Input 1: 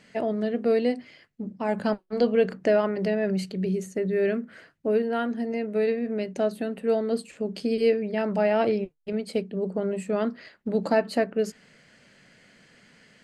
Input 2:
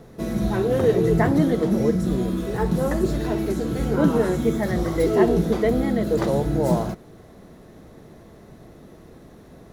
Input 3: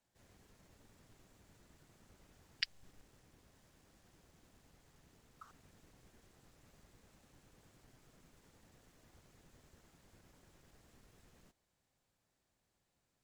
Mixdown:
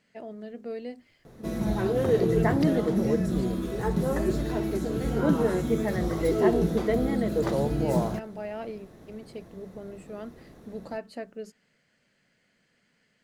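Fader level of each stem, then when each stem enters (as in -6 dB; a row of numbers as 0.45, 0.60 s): -13.5, -4.5, -7.0 dB; 0.00, 1.25, 0.00 s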